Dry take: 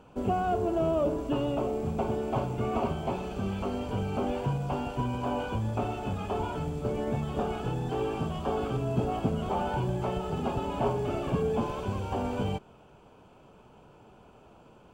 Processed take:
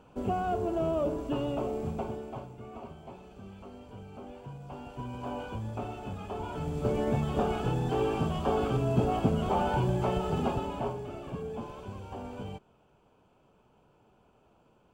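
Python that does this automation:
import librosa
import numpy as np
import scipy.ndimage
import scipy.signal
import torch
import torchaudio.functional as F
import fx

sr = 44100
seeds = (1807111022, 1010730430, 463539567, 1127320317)

y = fx.gain(x, sr, db=fx.line((1.88, -2.5), (2.58, -15.0), (4.43, -15.0), (5.27, -6.0), (6.39, -6.0), (6.84, 2.0), (10.42, 2.0), (11.09, -9.5)))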